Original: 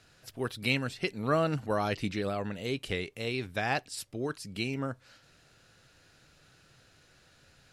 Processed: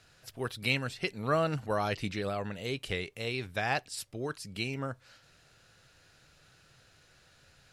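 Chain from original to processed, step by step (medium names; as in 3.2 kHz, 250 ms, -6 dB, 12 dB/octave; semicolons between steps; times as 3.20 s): peaking EQ 270 Hz -4.5 dB 1.1 oct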